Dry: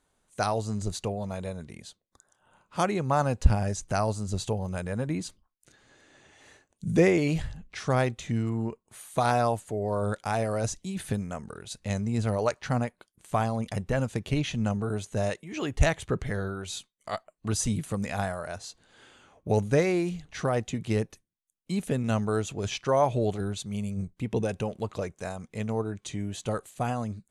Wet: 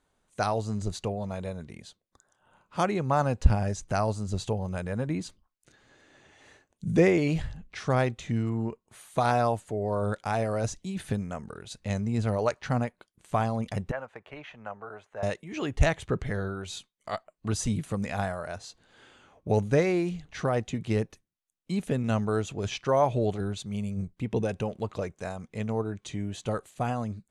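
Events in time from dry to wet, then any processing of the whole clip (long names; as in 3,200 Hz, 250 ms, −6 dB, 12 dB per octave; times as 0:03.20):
0:13.91–0:15.23: three-way crossover with the lows and the highs turned down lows −24 dB, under 580 Hz, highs −24 dB, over 2,100 Hz
whole clip: high-shelf EQ 7,900 Hz −9.5 dB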